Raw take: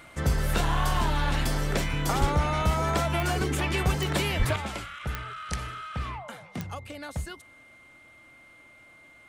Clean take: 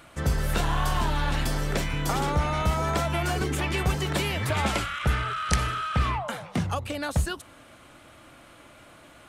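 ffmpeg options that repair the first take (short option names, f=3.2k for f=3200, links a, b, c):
-filter_complex "[0:a]adeclick=t=4,bandreject=f=2.1k:w=30,asplit=3[a][b][c];[a]afade=t=out:st=2.2:d=0.02[d];[b]highpass=f=140:w=0.5412,highpass=f=140:w=1.3066,afade=t=in:st=2.2:d=0.02,afade=t=out:st=2.32:d=0.02[e];[c]afade=t=in:st=2.32:d=0.02[f];[d][e][f]amix=inputs=3:normalize=0,asplit=3[g][h][i];[g]afade=t=out:st=4.38:d=0.02[j];[h]highpass=f=140:w=0.5412,highpass=f=140:w=1.3066,afade=t=in:st=4.38:d=0.02,afade=t=out:st=4.5:d=0.02[k];[i]afade=t=in:st=4.5:d=0.02[l];[j][k][l]amix=inputs=3:normalize=0,asetnsamples=n=441:p=0,asendcmd='4.56 volume volume 8.5dB',volume=0dB"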